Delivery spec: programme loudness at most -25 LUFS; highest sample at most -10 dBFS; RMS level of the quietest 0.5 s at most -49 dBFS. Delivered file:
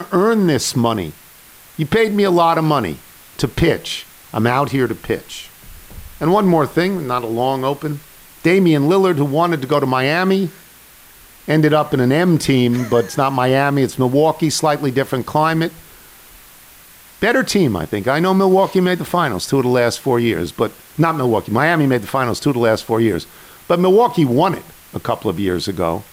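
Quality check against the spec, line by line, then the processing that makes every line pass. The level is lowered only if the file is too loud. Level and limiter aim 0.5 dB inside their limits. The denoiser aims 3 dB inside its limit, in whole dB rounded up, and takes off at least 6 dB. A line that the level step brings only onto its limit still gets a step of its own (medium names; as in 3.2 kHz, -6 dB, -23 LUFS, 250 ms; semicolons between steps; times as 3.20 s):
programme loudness -16.5 LUFS: fail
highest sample -3.5 dBFS: fail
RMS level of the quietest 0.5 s -44 dBFS: fail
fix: trim -9 dB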